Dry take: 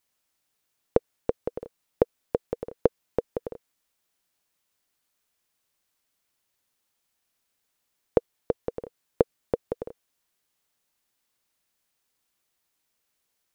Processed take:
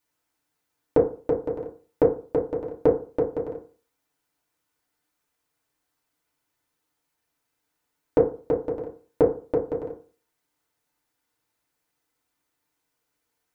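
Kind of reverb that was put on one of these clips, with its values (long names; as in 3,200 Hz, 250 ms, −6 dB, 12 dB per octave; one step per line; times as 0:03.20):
feedback delay network reverb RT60 0.39 s, low-frequency decay 1×, high-frequency decay 0.25×, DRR −5 dB
level −4 dB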